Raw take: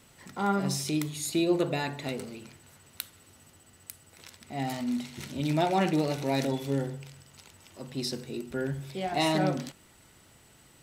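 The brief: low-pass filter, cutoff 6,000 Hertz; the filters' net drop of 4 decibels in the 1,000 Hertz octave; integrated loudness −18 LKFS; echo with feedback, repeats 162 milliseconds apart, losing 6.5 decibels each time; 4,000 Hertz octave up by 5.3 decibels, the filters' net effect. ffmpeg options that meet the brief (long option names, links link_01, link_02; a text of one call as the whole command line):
ffmpeg -i in.wav -af "lowpass=6000,equalizer=frequency=1000:width_type=o:gain=-6.5,equalizer=frequency=4000:width_type=o:gain=7.5,aecho=1:1:162|324|486|648|810|972:0.473|0.222|0.105|0.0491|0.0231|0.0109,volume=11.5dB" out.wav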